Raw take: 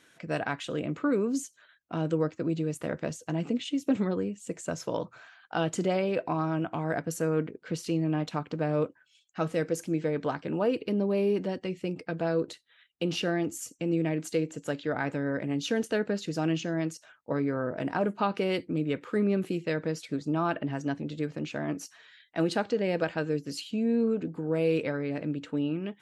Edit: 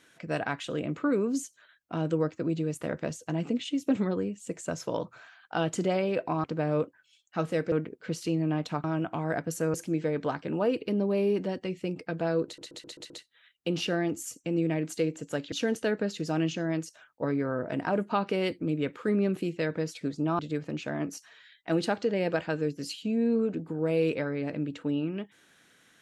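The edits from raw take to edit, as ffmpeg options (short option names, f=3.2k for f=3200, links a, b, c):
-filter_complex "[0:a]asplit=12[a][b][c][d][e][f][g][h][i][j][k][l];[a]atrim=end=6.442[m];[b]atrim=start=8.458:end=9.742[n];[c]atrim=start=7.338:end=8.462[o];[d]atrim=start=6.438:end=7.342[p];[e]atrim=start=9.738:end=12.582[q];[f]atrim=start=12.448:end=12.582[r];[g]atrim=start=12.448:end=12.582[s];[h]atrim=start=12.448:end=12.582[t];[i]atrim=start=12.448:end=12.582[u];[j]atrim=start=12.448:end=14.872[v];[k]atrim=start=15.598:end=20.472[w];[l]atrim=start=21.068[x];[m][n]acrossfade=d=0.004:c1=hsin:c2=hsin[y];[y][o]acrossfade=d=0.004:c1=hsin:c2=hsin[z];[z][p]acrossfade=d=0.004:c1=hsin:c2=hsin[aa];[aa][q]acrossfade=d=0.004:c1=hsin:c2=hsin[ab];[ab][r]acrossfade=d=0.004:c1=hsin:c2=hsin[ac];[ac][s]acrossfade=d=0.004:c1=hsin:c2=hsin[ad];[ad][t]acrossfade=d=0.004:c1=hsin:c2=hsin[ae];[ae][u]acrossfade=d=0.004:c1=hsin:c2=hsin[af];[af][v]acrossfade=d=0.004:c1=hsin:c2=hsin[ag];[ag][w]acrossfade=d=0.004:c1=hsin:c2=hsin[ah];[ah][x]acrossfade=d=0.004:c1=hsin:c2=hsin"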